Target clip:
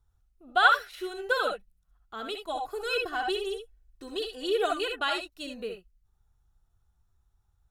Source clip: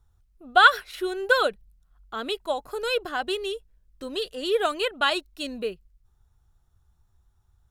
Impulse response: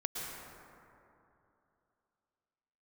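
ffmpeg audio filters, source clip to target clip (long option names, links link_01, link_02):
-filter_complex "[0:a]asettb=1/sr,asplit=3[link_01][link_02][link_03];[link_01]atrim=end=2.484[link_04];[link_02]atrim=start=2.48:end=5.02,asetpts=PTS-STARTPTS,afade=type=in:duration=0.004:curve=qsin,afade=type=out:start_time=2.536:duration=0.004:curve=qsin,aecho=1:1:2.7:0.75,atrim=end_sample=112014[link_05];[link_03]atrim=start=5.016[link_06];[link_04][link_05]acrossfade=duration=0.004:curve1=hsin:curve2=qsin[link_07];[link_07][link_06]acrossfade=duration=0.004:curve1=qsin:curve2=hsin[link_08];[1:a]atrim=start_sample=2205,afade=type=out:start_time=0.19:duration=0.01,atrim=end_sample=8820,asetrate=79380,aresample=44100[link_09];[link_08][link_09]afir=irnorm=-1:irlink=0"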